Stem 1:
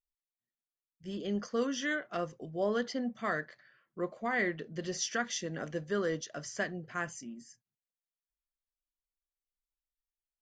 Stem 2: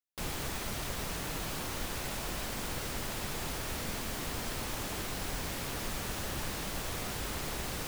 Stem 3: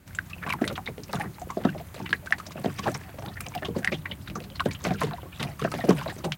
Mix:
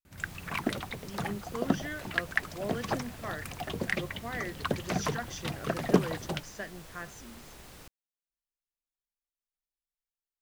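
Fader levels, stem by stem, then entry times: -6.0, -13.0, -3.5 dB; 0.00, 0.00, 0.05 s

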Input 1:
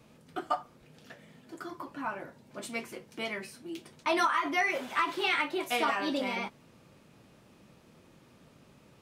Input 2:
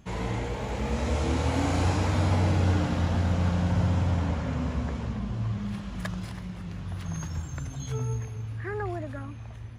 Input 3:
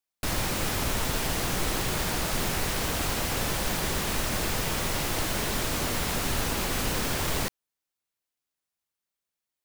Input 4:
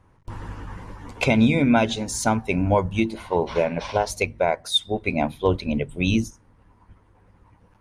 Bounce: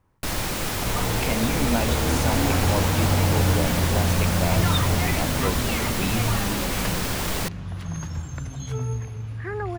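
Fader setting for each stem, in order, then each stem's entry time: -4.0, +2.5, +1.5, -8.5 dB; 0.45, 0.80, 0.00, 0.00 s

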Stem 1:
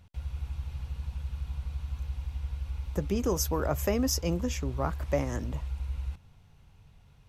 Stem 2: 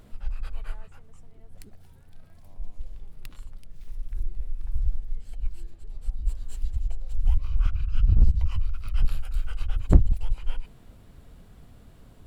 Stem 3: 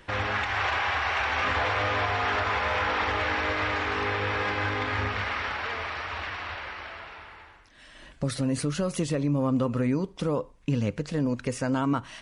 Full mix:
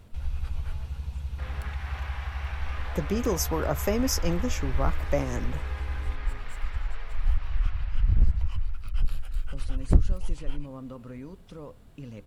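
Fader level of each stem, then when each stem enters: +1.5, -3.0, -15.5 dB; 0.00, 0.00, 1.30 s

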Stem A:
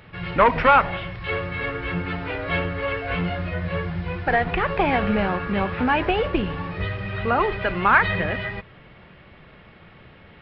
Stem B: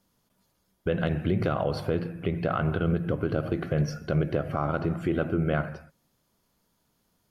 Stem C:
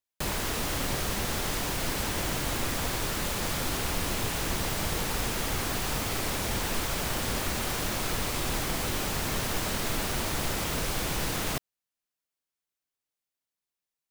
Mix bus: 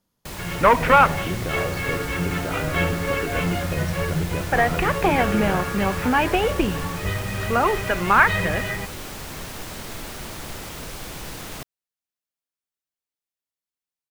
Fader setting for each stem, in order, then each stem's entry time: +1.0, -3.5, -4.5 dB; 0.25, 0.00, 0.05 s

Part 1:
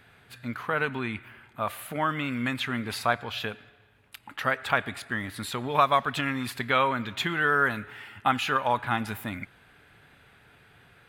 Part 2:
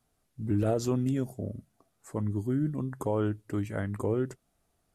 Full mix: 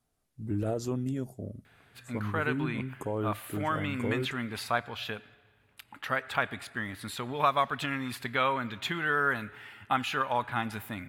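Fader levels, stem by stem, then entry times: -4.0, -4.0 dB; 1.65, 0.00 s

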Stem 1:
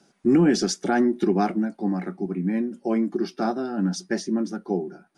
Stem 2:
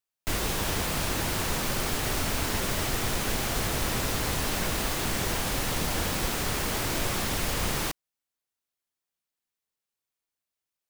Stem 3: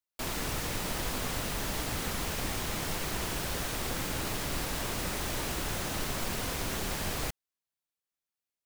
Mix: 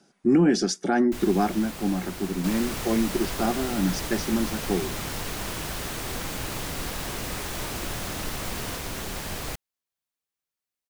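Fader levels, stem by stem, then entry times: -1.0, -9.5, +0.5 dB; 0.00, 0.85, 2.25 s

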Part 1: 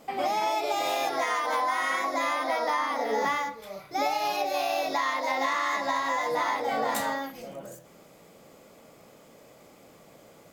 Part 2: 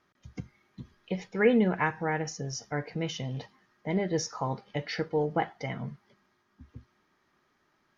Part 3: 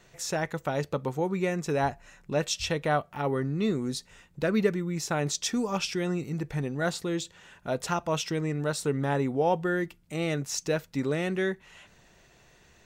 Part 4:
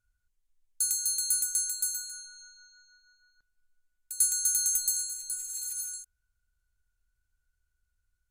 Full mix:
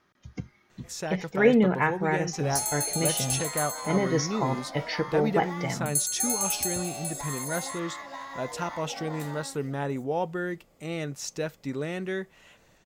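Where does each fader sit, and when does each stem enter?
-12.0, +3.0, -3.5, -1.5 dB; 2.25, 0.00, 0.70, 1.75 s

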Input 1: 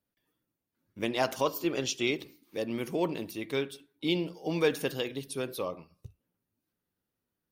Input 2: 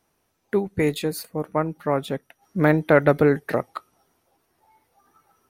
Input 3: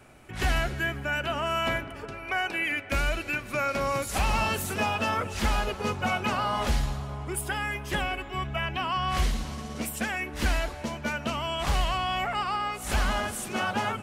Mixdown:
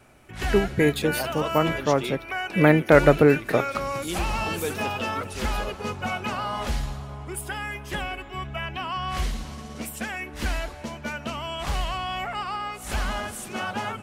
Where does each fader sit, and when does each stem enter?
-4.0, +1.0, -1.5 dB; 0.00, 0.00, 0.00 s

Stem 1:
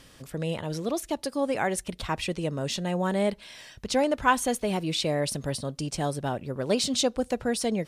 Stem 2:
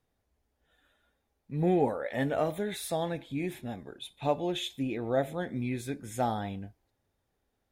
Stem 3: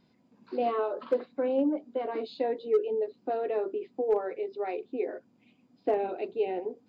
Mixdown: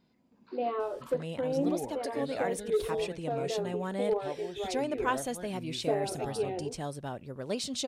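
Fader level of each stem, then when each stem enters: -8.5, -11.0, -3.5 dB; 0.80, 0.00, 0.00 s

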